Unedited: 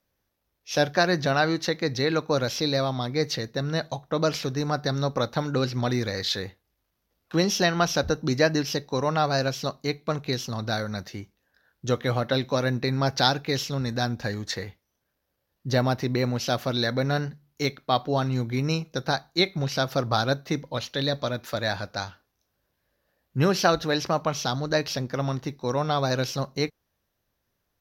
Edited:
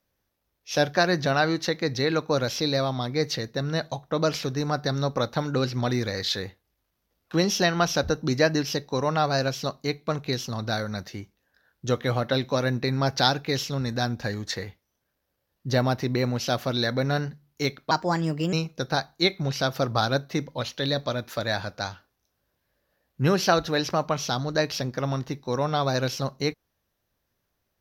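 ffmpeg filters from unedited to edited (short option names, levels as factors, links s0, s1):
-filter_complex "[0:a]asplit=3[s0][s1][s2];[s0]atrim=end=17.914[s3];[s1]atrim=start=17.91:end=18.69,asetpts=PTS-STARTPTS,asetrate=55566,aresample=44100[s4];[s2]atrim=start=18.686[s5];[s3][s4]acrossfade=d=0.004:c1=hsin:c2=hsin[s6];[s6][s5]acrossfade=d=0.004:c1=hsin:c2=hsin"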